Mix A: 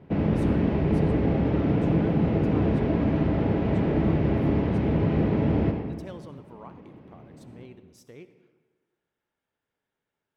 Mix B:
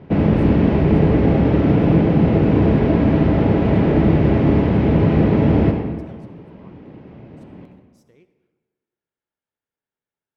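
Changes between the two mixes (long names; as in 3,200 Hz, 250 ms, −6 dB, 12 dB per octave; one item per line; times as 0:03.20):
speech −8.0 dB
background +8.5 dB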